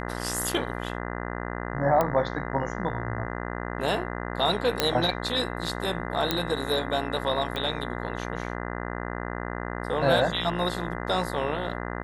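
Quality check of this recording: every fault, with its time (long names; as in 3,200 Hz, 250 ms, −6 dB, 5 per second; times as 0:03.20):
mains buzz 60 Hz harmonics 34 −33 dBFS
0:02.01: click −11 dBFS
0:04.80: click −5 dBFS
0:06.31: click −8 dBFS
0:07.56: click −18 dBFS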